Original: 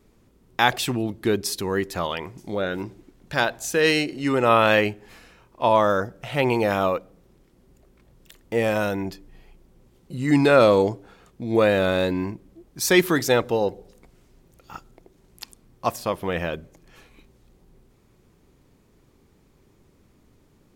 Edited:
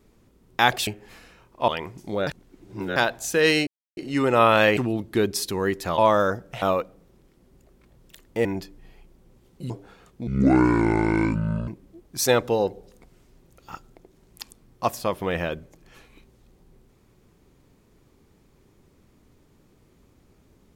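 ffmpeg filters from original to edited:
-filter_complex "[0:a]asplit=14[a][b][c][d][e][f][g][h][i][j][k][l][m][n];[a]atrim=end=0.872[o];[b]atrim=start=4.868:end=5.682[p];[c]atrim=start=2.078:end=2.672[q];[d]atrim=start=2.668:end=3.362,asetpts=PTS-STARTPTS,areverse[r];[e]atrim=start=3.358:end=4.07,asetpts=PTS-STARTPTS,afade=t=out:st=0.708:d=0.004:c=hsin,apad=pad_dur=0.3[s];[f]atrim=start=4.07:end=4.872,asetpts=PTS-STARTPTS,afade=t=in:d=0.004:c=hsin[t];[g]atrim=start=0.868:end=2.082[u];[h]atrim=start=5.678:end=6.322[v];[i]atrim=start=6.778:end=8.612[w];[j]atrim=start=8.948:end=10.202[x];[k]atrim=start=10.898:end=11.474[y];[l]atrim=start=11.47:end=12.3,asetpts=PTS-STARTPTS,asetrate=26019,aresample=44100[z];[m]atrim=start=12.296:end=12.882[aa];[n]atrim=start=13.268[ab];[o][p]acrossfade=d=0.004:c1=hsin:c2=hsin[ac];[ac][q]acrossfade=d=0.004:c1=hsin:c2=hsin[ad];[ad][r]acrossfade=d=0.004:c1=hsin:c2=hsin[ae];[s][t]concat=n=2:v=0:a=1[af];[ae][af]acrossfade=d=0.004:c1=hsin:c2=hsin[ag];[ag][u]acrossfade=d=0.004:c1=hsin:c2=hsin[ah];[ah][v]acrossfade=d=0.004:c1=hsin:c2=hsin[ai];[ai][w]acrossfade=d=0.004:c1=hsin:c2=hsin[aj];[aj][x]acrossfade=d=0.004:c1=hsin:c2=hsin[ak];[ak][y]acrossfade=d=0.004:c1=hsin:c2=hsin[al];[al][z]acrossfade=d=0.004:c1=hsin:c2=hsin[am];[am][aa]acrossfade=d=0.004:c1=hsin:c2=hsin[an];[an][ab]acrossfade=d=0.004:c1=hsin:c2=hsin"

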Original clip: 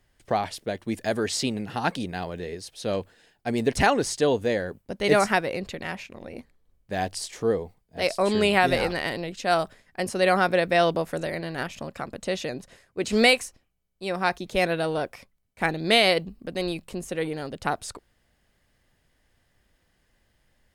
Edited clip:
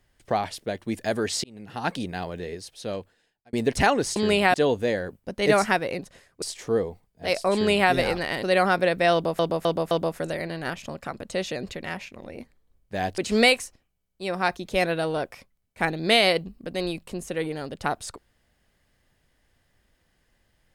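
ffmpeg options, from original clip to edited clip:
-filter_complex "[0:a]asplit=13[a][b][c][d][e][f][g][h][i][j][k][l][m];[a]atrim=end=1.44,asetpts=PTS-STARTPTS,afade=t=out:st=1.436:d=0.004:c=hsin[n];[b]atrim=start=1.44:end=3.53,asetpts=PTS-STARTPTS,afade=t=in:d=0.53,afade=t=out:st=1.11:d=0.98[o];[c]atrim=start=3.53:end=4.162,asetpts=PTS-STARTPTS,afade=t=in:d=0.004:c=hsin[p];[d]atrim=start=8.278:end=8.662[q];[e]atrim=start=4.158:end=5.612[r];[f]atrim=start=12.558:end=12.992[s];[g]atrim=start=7.158:end=9.172[t];[h]atrim=start=10.138:end=11.102[u];[i]atrim=start=10.838:end=11.102[v];[j]atrim=start=10.838:end=11.102[w];[k]atrim=start=10.838:end=12.562[x];[l]atrim=start=5.608:end=7.162[y];[m]atrim=start=12.988[z];[n][o][p]concat=n=3:v=0:a=1[aa];[aa][q]acrossfade=d=0.004:c1=hsin:c2=hsin[ab];[ab][r]acrossfade=d=0.004:c1=hsin:c2=hsin[ac];[ac][s]acrossfade=d=0.004:c1=hsin:c2=hsin[ad];[ad][t]acrossfade=d=0.004:c1=hsin:c2=hsin[ae];[ae][u]acrossfade=d=0.004:c1=hsin:c2=hsin[af];[af][v]acrossfade=d=0.004:c1=hsin:c2=hsin[ag];[ag][w]acrossfade=d=0.004:c1=hsin:c2=hsin[ah];[ah][x]acrossfade=d=0.004:c1=hsin:c2=hsin[ai];[ai][y]acrossfade=d=0.004:c1=hsin:c2=hsin[aj];[aj][z]acrossfade=d=0.004:c1=hsin:c2=hsin"

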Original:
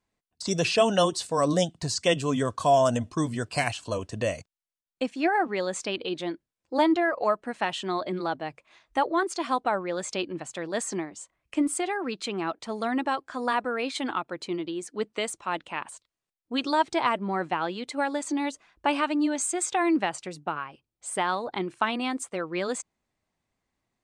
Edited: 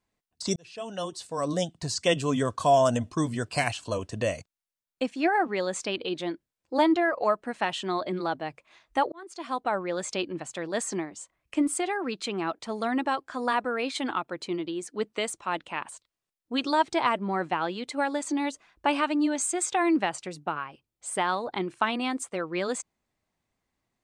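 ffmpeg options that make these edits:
-filter_complex "[0:a]asplit=3[a][b][c];[a]atrim=end=0.56,asetpts=PTS-STARTPTS,afade=t=out:st=0.556:d=0.004:c=hsin[d];[b]atrim=start=0.56:end=9.12,asetpts=PTS-STARTPTS,afade=t=in:d=1.64,afade=t=out:st=8.556:d=0.004:c=hsin[e];[c]atrim=start=9.12,asetpts=PTS-STARTPTS,afade=t=in:d=0.7[f];[d][e][f]concat=n=3:v=0:a=1"

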